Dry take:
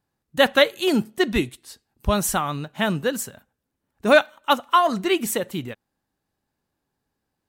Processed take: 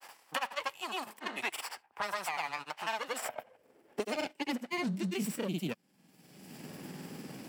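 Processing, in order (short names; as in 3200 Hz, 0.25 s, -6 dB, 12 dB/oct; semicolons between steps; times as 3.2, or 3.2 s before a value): minimum comb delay 0.39 ms; in parallel at -4.5 dB: soft clip -19.5 dBFS, distortion -8 dB; on the sum: grains, spray 0.1 s, pitch spread up and down by 0 st; reverse; compressor 6:1, threshold -35 dBFS, peak gain reduction 21 dB; reverse; high-pass sweep 940 Hz -> 170 Hz, 2.88–4.91; three-band squash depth 100%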